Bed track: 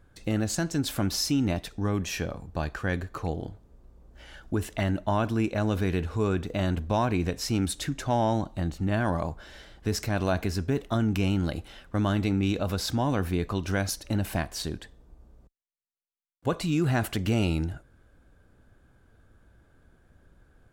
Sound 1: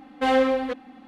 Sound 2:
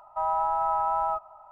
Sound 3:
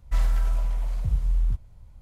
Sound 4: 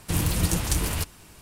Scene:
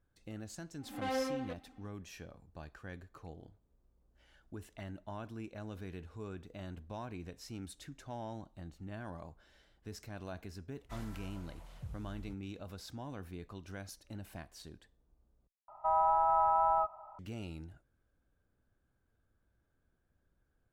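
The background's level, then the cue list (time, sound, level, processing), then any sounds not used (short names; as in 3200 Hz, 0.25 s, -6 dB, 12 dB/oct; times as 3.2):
bed track -18.5 dB
0.8 add 1 -15.5 dB + backwards sustainer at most 110 dB/s
10.78 add 3 -12.5 dB + HPF 94 Hz
15.68 replace with 2 -1.5 dB + LPF 1900 Hz 6 dB/oct
not used: 4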